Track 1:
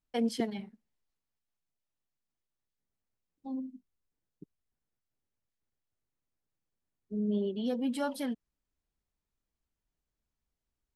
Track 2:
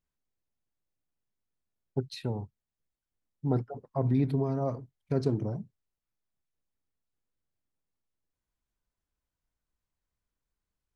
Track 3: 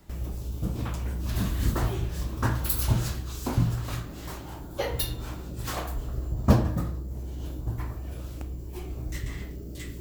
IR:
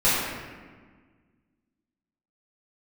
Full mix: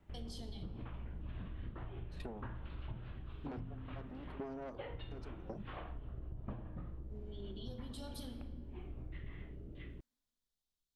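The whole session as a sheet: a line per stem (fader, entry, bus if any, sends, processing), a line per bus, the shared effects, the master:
−12.0 dB, 0.00 s, send −21 dB, high shelf with overshoot 2,800 Hz +8.5 dB, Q 3; brickwall limiter −28.5 dBFS, peak gain reduction 10 dB
+3.0 dB, 0.00 s, no send, high-pass filter 200 Hz 24 dB per octave; tube saturation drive 31 dB, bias 0.55; tremolo with a ramp in dB decaying 0.91 Hz, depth 23 dB
−12.0 dB, 0.00 s, no send, sub-octave generator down 2 octaves, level −3 dB; Butterworth low-pass 3,300 Hz 48 dB per octave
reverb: on, RT60 1.5 s, pre-delay 3 ms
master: downward compressor 8 to 1, threshold −41 dBFS, peak gain reduction 16.5 dB

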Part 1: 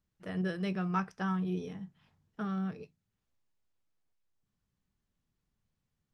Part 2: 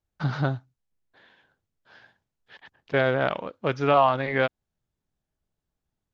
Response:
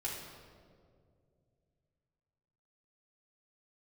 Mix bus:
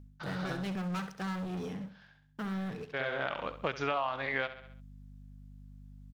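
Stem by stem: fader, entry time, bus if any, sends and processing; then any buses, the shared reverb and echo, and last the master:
−13.5 dB, 0.00 s, no send, echo send −12 dB, leveller curve on the samples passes 5
+1.0 dB, 0.00 s, no send, echo send −14.5 dB, tilt shelving filter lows −6 dB, about 670 Hz; mains hum 50 Hz, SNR 23 dB; automatic ducking −17 dB, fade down 0.30 s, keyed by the first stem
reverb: not used
echo: repeating echo 67 ms, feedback 37%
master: downward compressor 6 to 1, threshold −30 dBFS, peak gain reduction 16.5 dB

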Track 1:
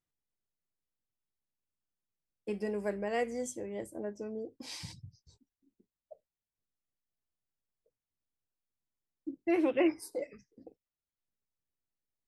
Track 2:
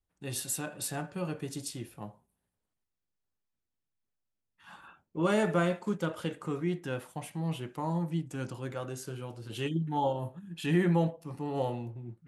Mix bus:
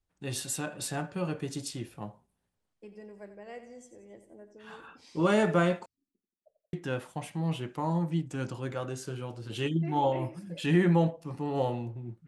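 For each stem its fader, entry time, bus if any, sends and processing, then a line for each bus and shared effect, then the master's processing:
−12.5 dB, 0.35 s, no send, echo send −11.5 dB, no processing
+2.5 dB, 0.00 s, muted 0:05.86–0:06.73, no send, no echo send, no processing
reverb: not used
echo: repeating echo 89 ms, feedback 48%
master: low-pass filter 8,600 Hz 12 dB per octave

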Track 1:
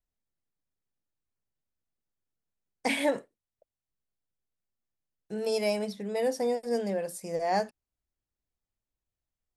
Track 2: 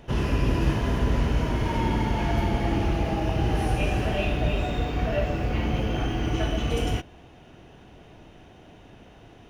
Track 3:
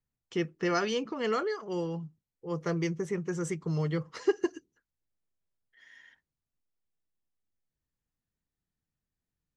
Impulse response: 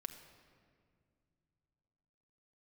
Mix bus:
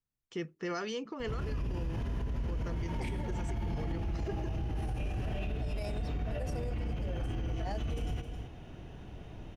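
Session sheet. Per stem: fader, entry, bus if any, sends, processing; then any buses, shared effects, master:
−6.5 dB, 0.15 s, no send, no echo send, low-pass that shuts in the quiet parts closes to 410 Hz, open at −27.5 dBFS; square-wave tremolo 1.6 Hz, depth 65%, duty 70%
−3.5 dB, 1.20 s, no send, echo send −14.5 dB, low-shelf EQ 160 Hz +11.5 dB; downward compressor 2 to 1, threshold −25 dBFS, peak gain reduction 9 dB
−5.0 dB, 0.00 s, no send, no echo send, no processing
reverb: not used
echo: single-tap delay 265 ms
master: brickwall limiter −28 dBFS, peak gain reduction 13 dB

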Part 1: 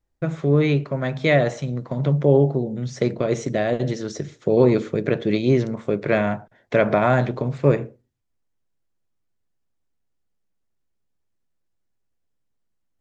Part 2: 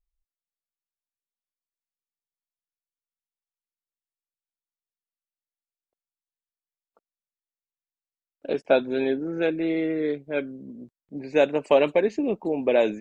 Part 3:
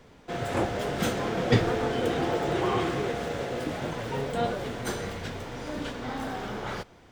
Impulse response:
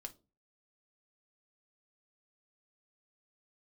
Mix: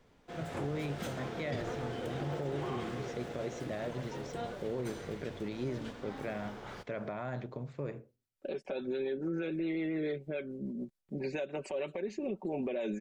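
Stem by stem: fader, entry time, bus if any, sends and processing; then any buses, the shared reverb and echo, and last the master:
−16.5 dB, 0.15 s, bus A, no send, no processing
+2.5 dB, 0.00 s, bus A, no send, rotating-speaker cabinet horn 7 Hz; downward compressor, threshold −23 dBFS, peak gain reduction 7.5 dB; comb filter 5.3 ms, depth 64%
−11.5 dB, 0.00 s, no bus, no send, no processing
bus A: 0.0 dB, downward compressor 6 to 1, threshold −29 dBFS, peak gain reduction 11.5 dB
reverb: not used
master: brickwall limiter −27.5 dBFS, peak gain reduction 12 dB

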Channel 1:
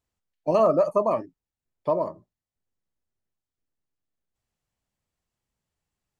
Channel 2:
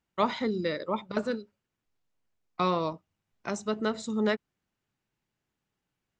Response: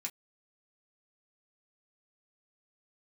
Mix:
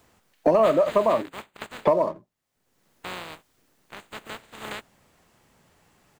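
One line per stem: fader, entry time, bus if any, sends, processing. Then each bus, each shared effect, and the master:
−0.5 dB, 0.00 s, no send, multiband upward and downward compressor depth 100%
−7.0 dB, 0.45 s, no send, compressing power law on the bin magnitudes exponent 0.14; moving average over 8 samples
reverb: not used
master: low-shelf EQ 110 Hz −7 dB; leveller curve on the samples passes 1

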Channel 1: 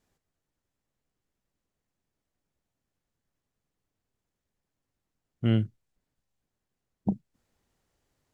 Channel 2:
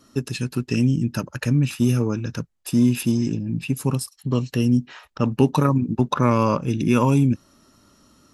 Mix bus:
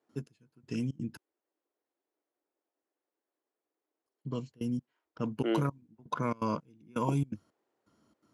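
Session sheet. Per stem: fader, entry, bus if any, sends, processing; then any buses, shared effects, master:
+0.5 dB, 0.00 s, no send, Chebyshev high-pass filter 320 Hz, order 4; spectral tilt −2 dB per octave
−12.5 dB, 0.00 s, muted 0:01.17–0:04.06, no send, EQ curve with evenly spaced ripples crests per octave 1.8, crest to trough 7 dB; gate pattern ".xx....xxx" 166 BPM −24 dB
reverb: not used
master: high-pass filter 95 Hz; one half of a high-frequency compander decoder only

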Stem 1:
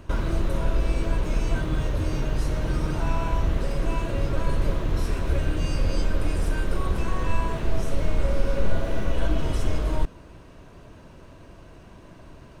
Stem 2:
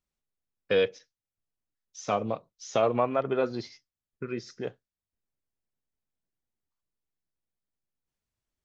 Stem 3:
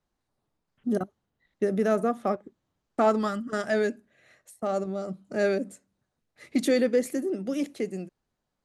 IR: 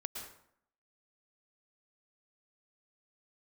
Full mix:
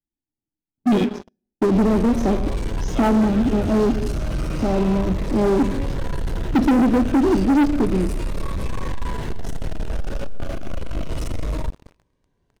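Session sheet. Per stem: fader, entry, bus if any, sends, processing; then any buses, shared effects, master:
−15.0 dB, 1.65 s, send −8 dB, soft clipping −25 dBFS, distortion −8 dB; phaser whose notches keep moving one way falling 0.31 Hz
−14.0 dB, 0.20 s, send −20.5 dB, spectral tilt +3 dB per octave; automatic ducking −15 dB, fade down 1.60 s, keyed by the third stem
+1.0 dB, 0.00 s, send −9 dB, formant resonators in series u; low-shelf EQ 160 Hz +12 dB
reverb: on, RT60 0.65 s, pre-delay 103 ms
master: leveller curve on the samples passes 5

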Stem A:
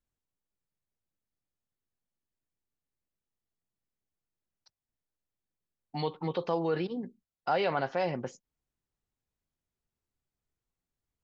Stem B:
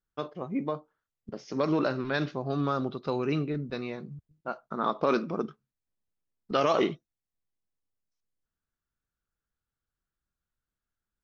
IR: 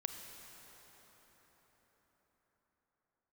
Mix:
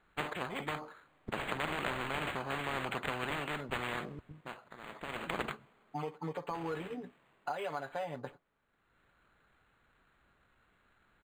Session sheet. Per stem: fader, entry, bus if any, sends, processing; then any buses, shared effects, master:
+1.0 dB, 0.00 s, no send, low-shelf EQ 500 Hz −11 dB; comb filter 6.9 ms, depth 93%; downward compressor 6 to 1, threshold −35 dBFS, peak gain reduction 11.5 dB
−0.5 dB, 0.00 s, send −21 dB, spectral tilt +2.5 dB per octave; every bin compressed towards the loudest bin 10 to 1; automatic ducking −19 dB, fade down 0.30 s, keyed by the first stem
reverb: on, RT60 5.3 s, pre-delay 28 ms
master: low-pass filter 3,900 Hz 12 dB per octave; linearly interpolated sample-rate reduction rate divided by 8×

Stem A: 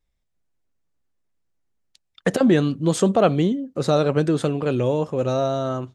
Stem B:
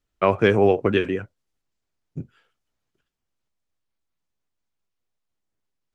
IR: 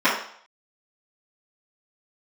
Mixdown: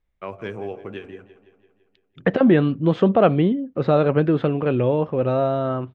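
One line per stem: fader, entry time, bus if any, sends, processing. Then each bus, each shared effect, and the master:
+1.5 dB, 0.00 s, no send, no echo send, low-pass filter 2,900 Hz 24 dB per octave
−14.0 dB, 0.00 s, no send, echo send −15.5 dB, hum removal 45.5 Hz, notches 16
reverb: not used
echo: repeating echo 168 ms, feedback 58%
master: no processing

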